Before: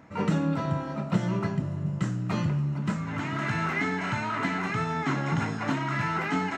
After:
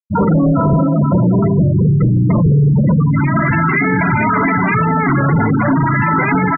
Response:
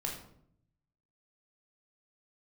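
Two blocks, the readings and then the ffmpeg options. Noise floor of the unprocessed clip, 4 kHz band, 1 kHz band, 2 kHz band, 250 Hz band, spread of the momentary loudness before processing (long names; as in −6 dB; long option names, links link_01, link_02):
−34 dBFS, below −20 dB, +14.0 dB, +13.0 dB, +16.0 dB, 3 LU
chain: -filter_complex "[0:a]aresample=8000,aresample=44100,asplit=2[link_01][link_02];[link_02]adelay=446,lowpass=frequency=1300:poles=1,volume=-6dB,asplit=2[link_03][link_04];[link_04]adelay=446,lowpass=frequency=1300:poles=1,volume=0.23,asplit=2[link_05][link_06];[link_06]adelay=446,lowpass=frequency=1300:poles=1,volume=0.23[link_07];[link_01][link_03][link_05][link_07]amix=inputs=4:normalize=0,asoftclip=type=hard:threshold=-28dB,afftfilt=real='re*gte(hypot(re,im),0.0501)':imag='im*gte(hypot(re,im),0.0501)':win_size=1024:overlap=0.75,bandreject=frequency=810:width=12,alimiter=level_in=31.5dB:limit=-1dB:release=50:level=0:latency=1,volume=-6.5dB"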